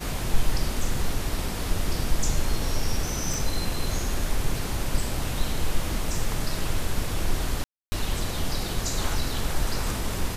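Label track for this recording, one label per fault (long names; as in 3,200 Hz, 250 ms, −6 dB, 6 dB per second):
3.340000	3.340000	click
7.640000	7.920000	drop-out 280 ms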